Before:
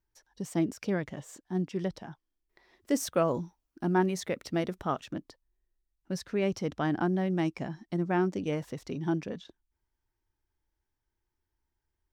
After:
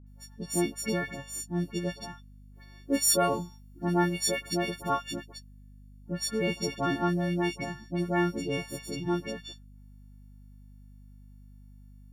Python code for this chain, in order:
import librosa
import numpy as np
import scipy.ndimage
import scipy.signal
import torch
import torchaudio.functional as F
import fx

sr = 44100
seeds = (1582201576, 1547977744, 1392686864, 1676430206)

y = fx.freq_snap(x, sr, grid_st=4)
y = fx.dispersion(y, sr, late='highs', ms=69.0, hz=1400.0)
y = fx.add_hum(y, sr, base_hz=50, snr_db=19)